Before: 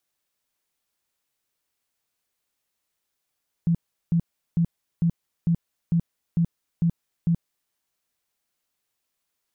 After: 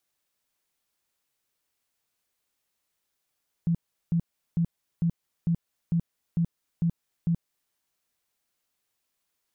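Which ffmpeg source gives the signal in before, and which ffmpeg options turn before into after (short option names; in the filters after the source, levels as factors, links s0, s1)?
-f lavfi -i "aevalsrc='0.141*sin(2*PI*168*mod(t,0.45))*lt(mod(t,0.45),13/168)':d=4.05:s=44100"
-af "alimiter=limit=0.0944:level=0:latency=1:release=223"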